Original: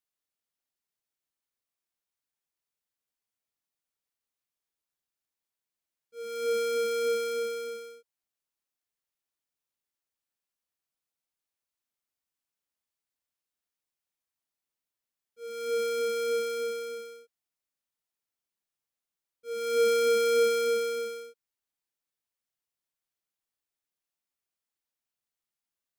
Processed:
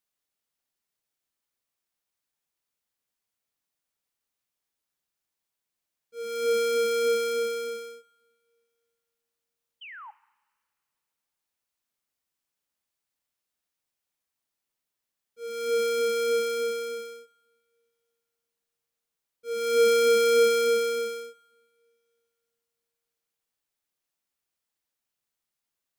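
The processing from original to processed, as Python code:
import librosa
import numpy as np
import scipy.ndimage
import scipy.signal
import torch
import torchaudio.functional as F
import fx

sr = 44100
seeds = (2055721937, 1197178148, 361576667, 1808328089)

y = fx.spec_paint(x, sr, seeds[0], shape='fall', start_s=9.81, length_s=0.3, low_hz=790.0, high_hz=3200.0, level_db=-47.0)
y = fx.rev_double_slope(y, sr, seeds[1], early_s=0.92, late_s=3.0, knee_db=-18, drr_db=17.5)
y = y * librosa.db_to_amplitude(4.0)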